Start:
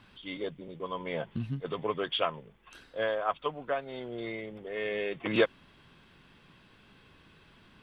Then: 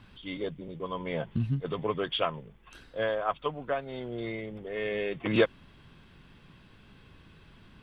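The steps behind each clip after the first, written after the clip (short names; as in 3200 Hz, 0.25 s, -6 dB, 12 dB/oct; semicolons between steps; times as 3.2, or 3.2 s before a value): low shelf 180 Hz +9.5 dB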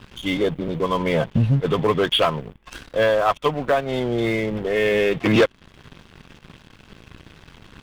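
in parallel at -3 dB: compressor, threshold -37 dBFS, peak gain reduction 18 dB; on the sum: sample leveller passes 3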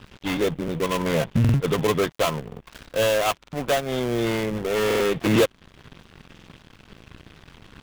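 switching dead time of 0.26 ms; stuck buffer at 1.4/2.47/3.39/4.86/6.33, samples 2048, times 2; gain -1.5 dB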